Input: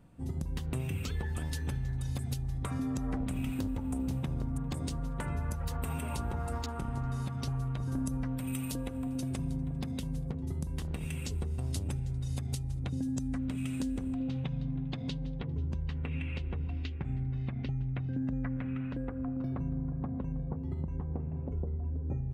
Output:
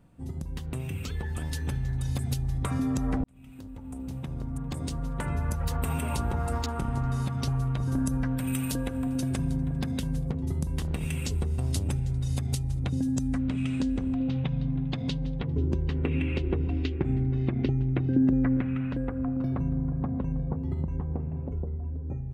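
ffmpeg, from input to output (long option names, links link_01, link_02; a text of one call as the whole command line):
ffmpeg -i in.wav -filter_complex "[0:a]asettb=1/sr,asplit=3[link_01][link_02][link_03];[link_01]atrim=end=7.984[link_04];[link_02]atrim=start=7.98:end=10.18,asetpts=PTS-STARTPTS,afade=type=in:duration=0.004:curve=qsin,afade=type=out:start_time=2.196:duration=0.004:curve=qsin,equalizer=frequency=1600:width_type=o:width=0.22:gain=7.5[link_05];[link_03]atrim=start=10.176[link_06];[link_04][link_05]acrossfade=duration=0.004:curve1=hsin:curve2=qsin[link_07];[link_07][link_06]acrossfade=duration=0.004:curve1=qsin:curve2=hsin,asettb=1/sr,asplit=3[link_08][link_09][link_10];[link_08]atrim=end=13.424[link_11];[link_09]atrim=start=13.42:end=14.71,asetpts=PTS-STARTPTS,afade=type=in:duration=0.004:curve=qsin,afade=type=out:start_time=1.286:duration=0.004:curve=qsin,lowpass=5200[link_12];[link_10]atrim=start=14.706[link_13];[link_11][link_12]acrossfade=duration=0.004:curve1=hsin:curve2=qsin[link_14];[link_14][link_13]acrossfade=duration=0.004:curve1=qsin:curve2=hsin,asettb=1/sr,asplit=3[link_15][link_16][link_17];[link_15]atrim=end=15.564[link_18];[link_16]atrim=start=15.56:end=18.61,asetpts=PTS-STARTPTS,afade=type=in:duration=0.004:curve=qsin,afade=type=out:start_time=3.046:duration=0.004:curve=qsin,equalizer=frequency=350:width_type=o:width=0.77:gain=14[link_19];[link_17]atrim=start=18.606[link_20];[link_18][link_19]acrossfade=duration=0.004:curve1=hsin:curve2=qsin[link_21];[link_21][link_20]acrossfade=duration=0.004:curve1=qsin:curve2=hsin,asplit=2[link_22][link_23];[link_22]atrim=end=3.24,asetpts=PTS-STARTPTS,afade=type=out:start_time=3.236:duration=0.004:curve=hsin[link_24];[link_23]atrim=start=3.24,asetpts=PTS-STARTPTS,afade=type=in:duration=2.4[link_25];[link_24][link_25]concat=n=2:v=0:a=1,dynaudnorm=framelen=360:gausssize=9:maxgain=6dB" out.wav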